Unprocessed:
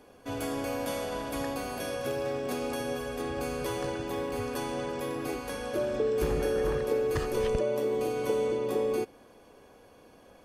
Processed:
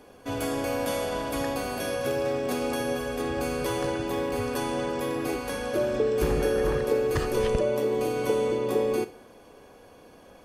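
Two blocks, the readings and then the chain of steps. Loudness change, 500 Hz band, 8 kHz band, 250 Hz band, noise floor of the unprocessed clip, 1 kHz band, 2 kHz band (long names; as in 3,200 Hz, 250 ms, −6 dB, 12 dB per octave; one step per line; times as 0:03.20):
+3.5 dB, +3.5 dB, +4.0 dB, +4.5 dB, −56 dBFS, +4.0 dB, +4.5 dB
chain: four-comb reverb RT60 0.53 s, combs from 33 ms, DRR 14.5 dB
level +4 dB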